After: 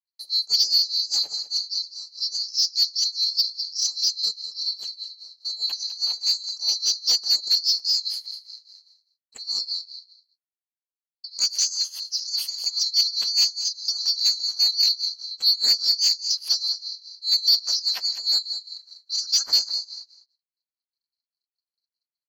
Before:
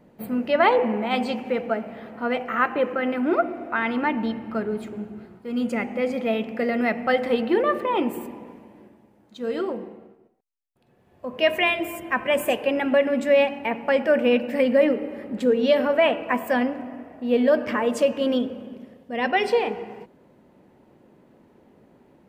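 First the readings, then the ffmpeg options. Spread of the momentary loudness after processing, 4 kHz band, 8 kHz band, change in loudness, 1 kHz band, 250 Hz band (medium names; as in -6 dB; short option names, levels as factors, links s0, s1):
13 LU, +17.0 dB, no reading, +2.0 dB, under -25 dB, under -35 dB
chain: -filter_complex "[0:a]afftfilt=real='real(if(lt(b,736),b+184*(1-2*mod(floor(b/184),2)),b),0)':imag='imag(if(lt(b,736),b+184*(1-2*mod(floor(b/184),2)),b),0)':win_size=2048:overlap=0.75,agate=range=0.00316:threshold=0.00355:ratio=16:detection=peak,bandreject=f=3900:w=5.7,adynamicequalizer=threshold=0.00794:dfrequency=8500:dqfactor=3.3:tfrequency=8500:tqfactor=3.3:attack=5:release=100:ratio=0.375:range=2:mode=cutabove:tftype=bell,tremolo=f=4.9:d=0.89,aeval=exprs='0.447*(cos(1*acos(clip(val(0)/0.447,-1,1)))-cos(1*PI/2))+0.0708*(cos(3*acos(clip(val(0)/0.447,-1,1)))-cos(3*PI/2))':c=same,aeval=exprs='val(0)*sin(2*PI*130*n/s)':c=same,aecho=1:1:203:0.2,asplit=2[s0][s1];[s1]highpass=f=720:p=1,volume=10,asoftclip=type=tanh:threshold=0.447[s2];[s0][s2]amix=inputs=2:normalize=0,lowpass=f=4300:p=1,volume=0.501,volume=1.33"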